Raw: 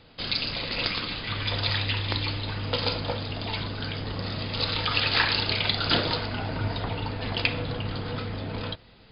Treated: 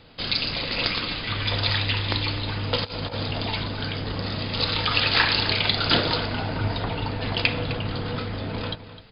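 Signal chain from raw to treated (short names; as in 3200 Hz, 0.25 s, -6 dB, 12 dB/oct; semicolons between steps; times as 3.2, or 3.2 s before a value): outdoor echo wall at 44 m, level -13 dB; 2.84–3.5 negative-ratio compressor -32 dBFS, ratio -0.5; gain +3 dB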